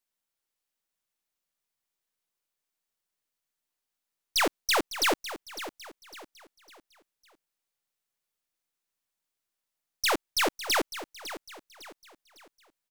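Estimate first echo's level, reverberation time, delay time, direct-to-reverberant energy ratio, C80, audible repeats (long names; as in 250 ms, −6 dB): −13.0 dB, no reverb audible, 554 ms, no reverb audible, no reverb audible, 3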